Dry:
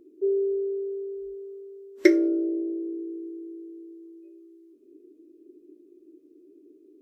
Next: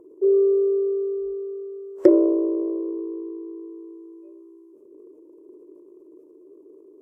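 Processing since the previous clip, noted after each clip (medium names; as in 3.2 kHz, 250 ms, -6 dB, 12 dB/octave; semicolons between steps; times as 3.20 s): low-pass that closes with the level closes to 610 Hz, closed at -24 dBFS; transient shaper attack -2 dB, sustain +6 dB; ten-band graphic EQ 125 Hz +5 dB, 250 Hz -10 dB, 500 Hz +12 dB, 1 kHz +9 dB, 2 kHz -7 dB, 4 kHz -12 dB; trim +2.5 dB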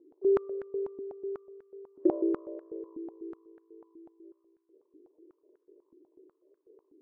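step-sequenced band-pass 8.1 Hz 290–1600 Hz; trim -5 dB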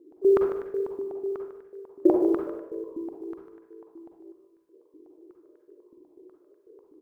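short-mantissa float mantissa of 6-bit; delay 149 ms -11 dB; reverberation RT60 0.60 s, pre-delay 38 ms, DRR 3.5 dB; trim +5.5 dB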